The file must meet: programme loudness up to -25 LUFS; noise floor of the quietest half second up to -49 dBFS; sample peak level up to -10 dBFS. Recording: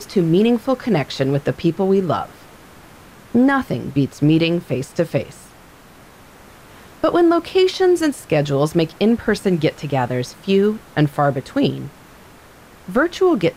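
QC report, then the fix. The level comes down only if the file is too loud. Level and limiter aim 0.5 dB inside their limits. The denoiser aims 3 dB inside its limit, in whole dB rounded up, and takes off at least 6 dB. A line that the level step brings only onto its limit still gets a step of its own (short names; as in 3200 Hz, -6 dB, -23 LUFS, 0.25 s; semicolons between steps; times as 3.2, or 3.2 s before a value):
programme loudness -18.5 LUFS: fail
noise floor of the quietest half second -45 dBFS: fail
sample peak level -5.5 dBFS: fail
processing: gain -7 dB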